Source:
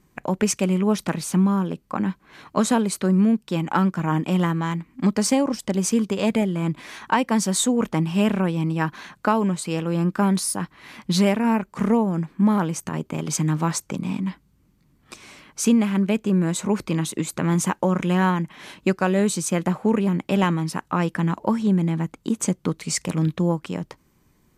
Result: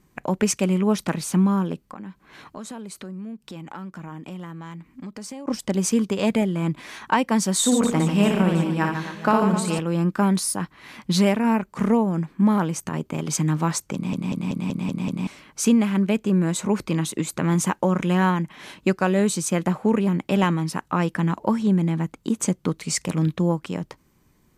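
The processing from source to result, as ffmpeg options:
-filter_complex "[0:a]asettb=1/sr,asplit=3[a][b][c];[a]atrim=end=1.874[d];[b]atrim=start=1.87:end=5.48,asetpts=PTS-STARTPTS,afade=t=in:d=0.004:c=qsin,afade=t=out:st=3.606:d=0.004:c=qsin,acompressor=threshold=-36dB:ratio=4:attack=3.2:release=140:knee=1:detection=peak[e];[c]atrim=start=5.476[f];[d][e]acrossfade=d=0.004:c1=hsin:c2=qsin[g];[g][f]acrossfade=d=0.004:c1=qsin:c2=hsin,asettb=1/sr,asplit=3[h][i][j];[h]atrim=end=7.574[k];[i]atrim=start=7.57:end=9.79,asetpts=PTS-STARTPTS,afade=t=in:d=0.004:c=qsin,afade=t=out:st=2.216:d=0.004:c=qsin,aecho=1:1:60|144|261.6|426.2|656.7|979.4:0.631|0.398|0.251|0.158|0.1|0.0631,atrim=end_sample=97902[l];[j]atrim=start=9.786[m];[k][l]acrossfade=d=0.004:c1=hsin:c2=qsin[n];[n][m]acrossfade=d=0.004:c1=qsin:c2=hsin,asplit=8[o][p][q][r][s][t][u][v];[o]atrim=end=14.132[w];[p]atrim=start=13.938:end=14.132[x];[q]atrim=start=13.938:end=14.132[y];[r]atrim=start=13.938:end=14.132[z];[s]atrim=start=13.938:end=14.132[aa];[t]atrim=start=13.938:end=14.132[ab];[u]atrim=start=13.938:end=14.132[ac];[v]atrim=start=15.268[ad];[w][x]acrossfade=d=0.004:c1=hsin:c2=hsin[ae];[ae][y]acrossfade=d=0.004:c1=hsin:c2=hsin[af];[af][z]acrossfade=d=0.004:c1=hsin:c2=hsin[ag];[ag][aa]acrossfade=d=0.004:c1=hsin:c2=hsin[ah];[ah][ab]acrossfade=d=0.004:c1=hsin:c2=hsin[ai];[ai][ac]acrossfade=d=0.004:c1=hsin:c2=hsin[aj];[aj][ad]acrossfade=d=0.004:c1=hsin:c2=hsin"

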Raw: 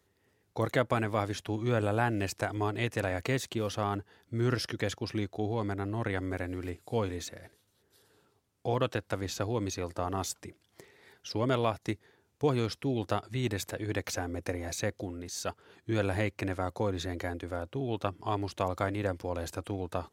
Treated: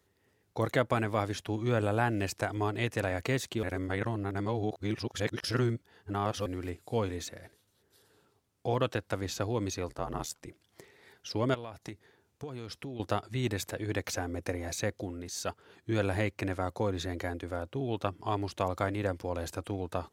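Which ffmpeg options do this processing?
-filter_complex "[0:a]asettb=1/sr,asplit=3[a][b][c];[a]atrim=end=9.884[d];[b]atrim=start=9.88:end=10.47,asetpts=PTS-STARTPTS,afade=t=in:d=0.004:c=qsin,afade=t=out:st=0.586:d=0.004:c=qsin,aeval=exprs='val(0)*sin(2*PI*39*n/s)':c=same[e];[c]atrim=start=10.466[f];[d][e]acrossfade=d=0.004:c1=hsin:c2=qsin[g];[g][f]acrossfade=d=0.004:c1=qsin:c2=hsin,asettb=1/sr,asplit=3[h][i][j];[h]atrim=end=11.544[k];[i]atrim=start=11.54:end=13,asetpts=PTS-STARTPTS,afade=t=in:d=0.004:c=qsin,afade=t=out:st=1.456:d=0.004:c=qsin,acompressor=threshold=-36dB:ratio=10:attack=3.2:release=140:knee=1:detection=peak[l];[j]atrim=start=12.996[m];[k][l]acrossfade=d=0.004:c1=hsin:c2=qsin[n];[n][m]acrossfade=d=0.004:c1=qsin:c2=hsin,asplit=3[o][p][q];[o]atrim=end=3.632[r];[p]atrim=start=3.628:end=6.462,asetpts=PTS-STARTPTS,areverse[s];[q]atrim=start=6.458[t];[r][s]acrossfade=d=0.004:c1=hsin:c2=hsin[u];[u][t]acrossfade=d=0.004:c1=hsin:c2=hsin"

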